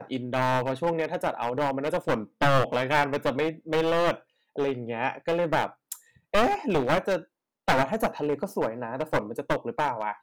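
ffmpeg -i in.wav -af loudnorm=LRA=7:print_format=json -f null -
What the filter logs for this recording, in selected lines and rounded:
"input_i" : "-27.4",
"input_tp" : "-8.0",
"input_lra" : "2.5",
"input_thresh" : "-37.6",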